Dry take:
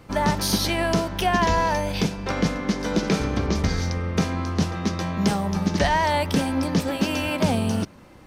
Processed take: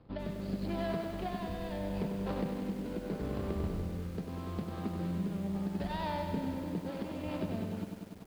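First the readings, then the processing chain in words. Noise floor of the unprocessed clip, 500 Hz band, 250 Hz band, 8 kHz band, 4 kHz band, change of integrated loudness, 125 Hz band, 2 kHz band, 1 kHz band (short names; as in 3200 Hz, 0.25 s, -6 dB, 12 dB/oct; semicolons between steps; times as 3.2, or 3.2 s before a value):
-47 dBFS, -12.5 dB, -11.5 dB, -26.5 dB, -21.5 dB, -13.5 dB, -12.5 dB, -20.5 dB, -17.5 dB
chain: median filter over 25 samples; compressor 12:1, threshold -24 dBFS, peak gain reduction 9.5 dB; rotary speaker horn 0.8 Hz, later 5 Hz, at 6.7; downsampling 11025 Hz; lo-fi delay 97 ms, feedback 80%, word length 8-bit, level -6.5 dB; gain -7.5 dB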